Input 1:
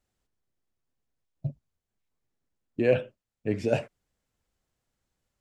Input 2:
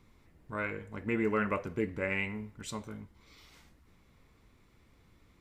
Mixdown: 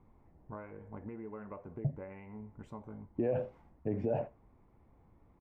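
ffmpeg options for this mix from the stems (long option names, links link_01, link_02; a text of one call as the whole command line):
ffmpeg -i stem1.wav -i stem2.wav -filter_complex "[0:a]lowpass=5300,adelay=400,volume=-1dB,asplit=2[link_01][link_02];[link_02]volume=-21dB[link_03];[1:a]acompressor=threshold=-41dB:ratio=8,volume=-0.5dB[link_04];[link_03]aecho=0:1:81:1[link_05];[link_01][link_04][link_05]amix=inputs=3:normalize=0,firequalizer=gain_entry='entry(510,0);entry(810,6);entry(1300,-7);entry(4000,-26)':delay=0.05:min_phase=1,alimiter=limit=-23.5dB:level=0:latency=1:release=57" out.wav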